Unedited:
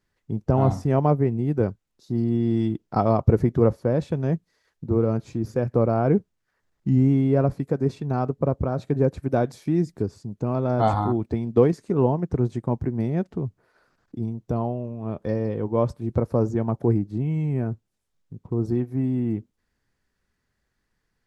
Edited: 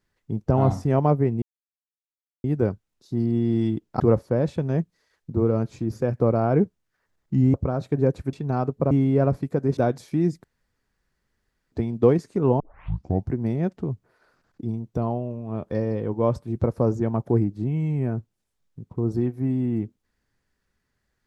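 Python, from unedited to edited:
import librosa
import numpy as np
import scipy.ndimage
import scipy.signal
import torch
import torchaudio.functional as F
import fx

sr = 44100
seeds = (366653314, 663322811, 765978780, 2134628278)

y = fx.edit(x, sr, fx.insert_silence(at_s=1.42, length_s=1.02),
    fx.cut(start_s=2.98, length_s=0.56),
    fx.swap(start_s=7.08, length_s=0.86, other_s=8.52, other_length_s=0.79),
    fx.room_tone_fill(start_s=9.98, length_s=1.28),
    fx.tape_start(start_s=12.14, length_s=0.72), tone=tone)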